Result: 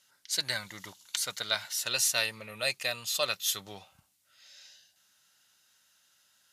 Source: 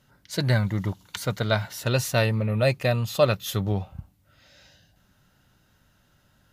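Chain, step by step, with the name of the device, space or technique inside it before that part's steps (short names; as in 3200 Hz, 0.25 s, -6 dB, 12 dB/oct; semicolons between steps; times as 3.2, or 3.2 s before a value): piezo pickup straight into a mixer (LPF 9000 Hz 12 dB/oct; differentiator); gain +8 dB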